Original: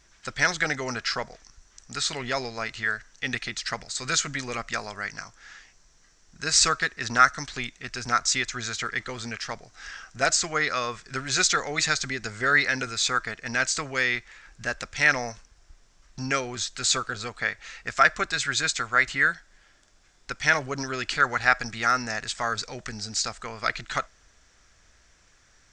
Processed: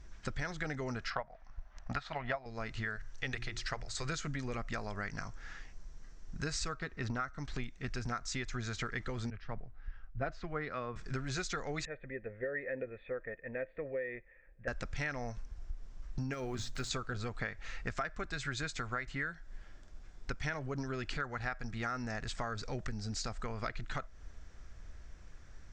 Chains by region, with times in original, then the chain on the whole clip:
1.10–2.46 s: low-pass 2.6 kHz + resonant low shelf 520 Hz -7 dB, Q 3 + transient shaper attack +11 dB, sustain -1 dB
2.96–4.09 s: peaking EQ 220 Hz -12 dB 0.84 oct + hum notches 60/120/180/240/300/360 Hz
6.74–7.47 s: treble shelf 5.7 kHz -10.5 dB + band-stop 1.7 kHz, Q 11
9.30–10.96 s: distance through air 310 m + three bands expanded up and down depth 100%
11.85–14.68 s: cascade formant filter e + dynamic bell 380 Hz, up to +6 dB, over -49 dBFS, Q 0.72
16.33–16.91 s: block-companded coder 5-bit + hum notches 60/120/180/240 Hz + compression 4:1, threshold -26 dBFS
whole clip: tilt EQ -3 dB/octave; compression 12:1, threshold -33 dBFS; trim -1 dB

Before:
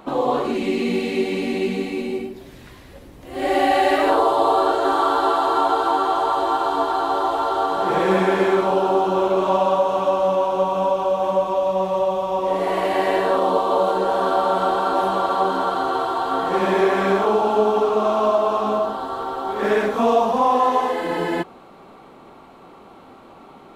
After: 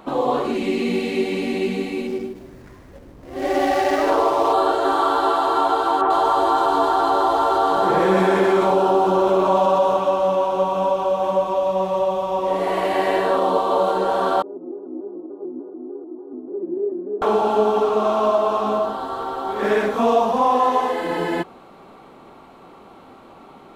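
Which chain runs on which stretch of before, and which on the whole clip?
2.07–4.53 s: median filter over 15 samples + peaking EQ 780 Hz -3 dB 0.2 oct + bit-crushed delay 145 ms, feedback 55%, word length 8-bit, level -15 dB
6.01–9.97 s: bands offset in time lows, highs 90 ms, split 2.5 kHz + level flattener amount 50%
14.42–17.22 s: Butterworth band-pass 320 Hz, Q 3.1 + vibrato with a chosen wave square 3.4 Hz, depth 100 cents
whole clip: none

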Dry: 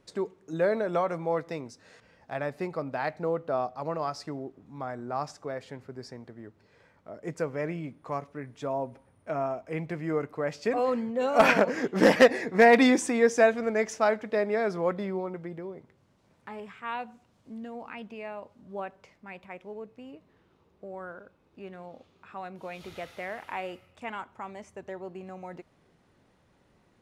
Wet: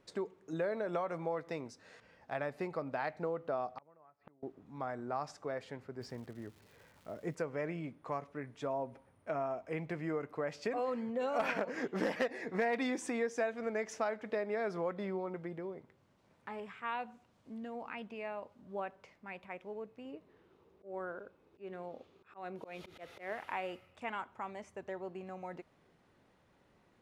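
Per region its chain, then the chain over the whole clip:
3.78–4.43 s: low-pass 2.4 kHz 24 dB/octave + inverted gate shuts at -33 dBFS, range -29 dB + transformer saturation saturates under 1.3 kHz
6.00–7.34 s: bass shelf 190 Hz +8 dB + crackle 490 per s -49 dBFS
20.05–23.33 s: peaking EQ 400 Hz +6.5 dB 0.76 oct + slow attack 152 ms
whole clip: tone controls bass 0 dB, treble -4 dB; compression 4:1, threshold -30 dBFS; bass shelf 250 Hz -4.5 dB; trim -2 dB

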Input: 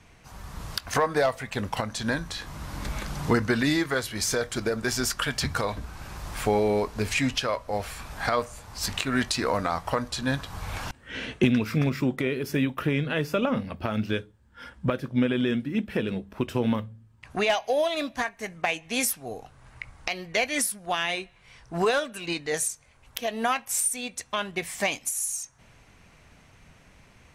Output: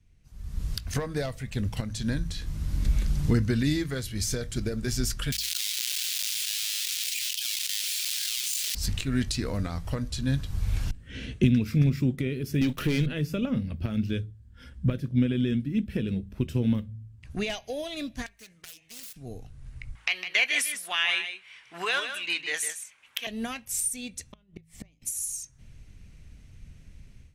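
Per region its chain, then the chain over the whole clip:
5.32–8.75 s: square wave that keeps the level + ladder high-pass 2.5 kHz, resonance 25% + level flattener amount 100%
12.61–13.06 s: high-pass 410 Hz 6 dB/octave + waveshaping leveller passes 3
18.26–19.16 s: self-modulated delay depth 0.7 ms + high-pass 1.1 kHz 6 dB/octave + compression 3:1, threshold -39 dBFS
19.95–23.27 s: high-pass 560 Hz + high-order bell 1.7 kHz +11.5 dB 2.3 oct + delay 155 ms -9 dB
24.32–25.02 s: treble shelf 2.3 kHz -9.5 dB + inverted gate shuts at -24 dBFS, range -30 dB + band-stop 1.6 kHz, Q 9.1
whole clip: amplifier tone stack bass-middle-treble 10-0-1; de-hum 54.3 Hz, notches 3; level rider gain up to 14 dB; trim +3.5 dB

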